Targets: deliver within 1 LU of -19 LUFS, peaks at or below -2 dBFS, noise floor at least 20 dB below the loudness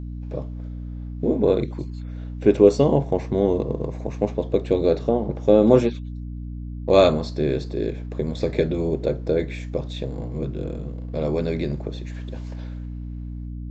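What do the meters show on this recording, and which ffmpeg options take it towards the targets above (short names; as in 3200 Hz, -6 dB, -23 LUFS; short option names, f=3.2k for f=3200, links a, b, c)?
hum 60 Hz; harmonics up to 300 Hz; hum level -30 dBFS; loudness -22.5 LUFS; peak -1.5 dBFS; loudness target -19.0 LUFS
-> -af "bandreject=f=60:t=h:w=6,bandreject=f=120:t=h:w=6,bandreject=f=180:t=h:w=6,bandreject=f=240:t=h:w=6,bandreject=f=300:t=h:w=6"
-af "volume=3.5dB,alimiter=limit=-2dB:level=0:latency=1"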